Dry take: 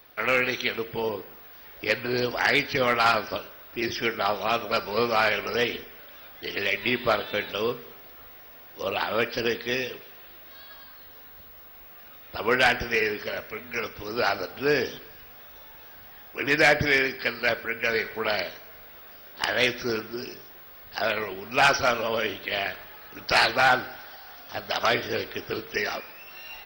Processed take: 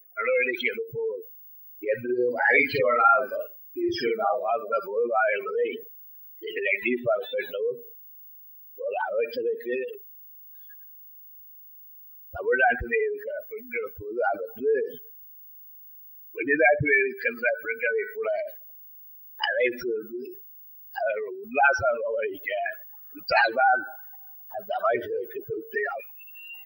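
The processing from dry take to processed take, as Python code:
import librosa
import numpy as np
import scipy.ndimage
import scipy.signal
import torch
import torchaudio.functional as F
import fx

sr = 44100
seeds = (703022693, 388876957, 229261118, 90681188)

y = fx.spec_expand(x, sr, power=3.5)
y = fx.dynamic_eq(y, sr, hz=2400.0, q=1.2, threshold_db=-39.0, ratio=4.0, max_db=3)
y = fx.doubler(y, sr, ms=49.0, db=-2.5, at=(2.08, 4.5), fade=0.02)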